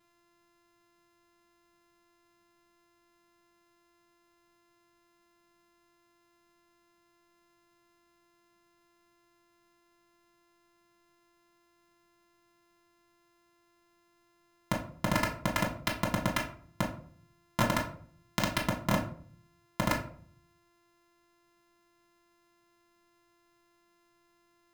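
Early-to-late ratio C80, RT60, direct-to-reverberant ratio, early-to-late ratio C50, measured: 13.0 dB, 0.55 s, -2.0 dB, 8.5 dB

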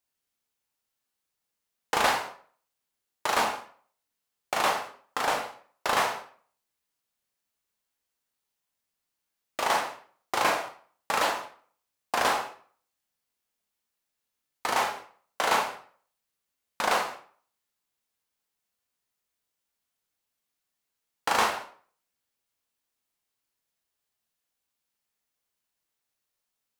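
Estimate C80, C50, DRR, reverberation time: 12.5 dB, 8.0 dB, 1.5 dB, 0.45 s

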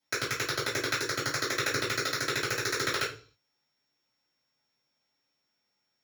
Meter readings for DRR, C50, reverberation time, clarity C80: -14.0 dB, 8.5 dB, 0.40 s, 14.0 dB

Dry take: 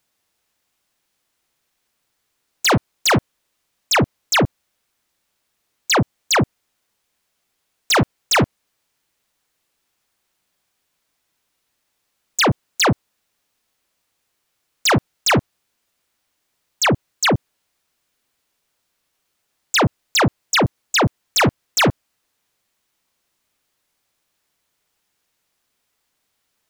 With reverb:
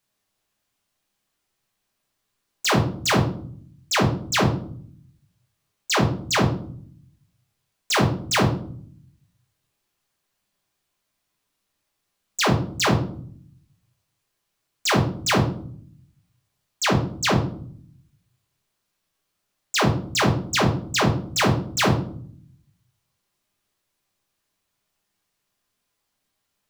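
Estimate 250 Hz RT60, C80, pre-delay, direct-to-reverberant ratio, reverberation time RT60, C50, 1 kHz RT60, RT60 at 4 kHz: 0.95 s, 12.5 dB, 5 ms, -0.5 dB, 0.55 s, 8.0 dB, 0.50 s, 0.40 s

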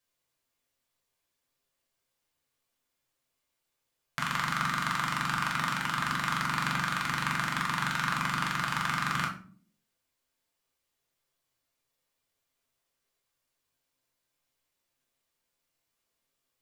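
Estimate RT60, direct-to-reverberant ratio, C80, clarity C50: 0.45 s, -1.5 dB, 13.5 dB, 9.0 dB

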